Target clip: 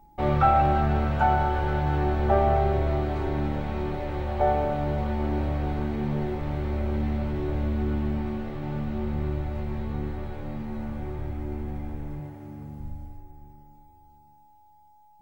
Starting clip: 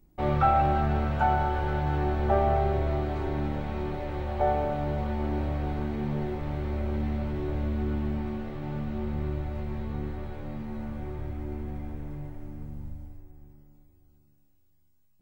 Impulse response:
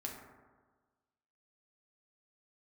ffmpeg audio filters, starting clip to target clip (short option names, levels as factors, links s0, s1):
-filter_complex "[0:a]aeval=exprs='val(0)+0.00141*sin(2*PI*840*n/s)':c=same,asettb=1/sr,asplit=3[s0][s1][s2];[s0]atrim=end=12.204[s3];[s1]atrim=start=12.2:end=12.8,asetpts=PTS-STARTPTS,afade=t=in:d=0.004:c=qsin,afade=t=out:st=0.596:d=0.004:c=qsin,highpass=89[s4];[s2]atrim=start=12.796[s5];[s3][s4]acrossfade=d=0.004:c1=hsin:c2=qsin[s6];[s6][s5]acrossfade=d=0.004:c1=qsin:c2=hsin,volume=1.33"